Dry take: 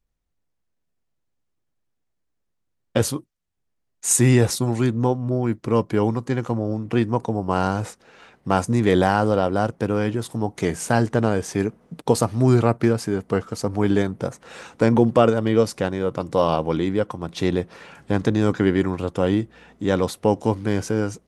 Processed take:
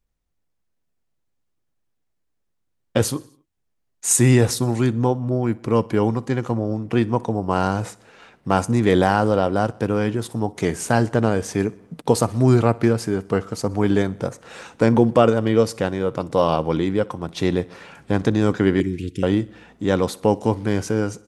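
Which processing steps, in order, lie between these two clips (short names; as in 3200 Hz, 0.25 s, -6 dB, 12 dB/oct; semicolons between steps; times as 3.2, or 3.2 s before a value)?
18.8–19.23 elliptic band-stop 360–2000 Hz, stop band 40 dB; feedback echo 62 ms, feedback 59%, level -23 dB; gain +1 dB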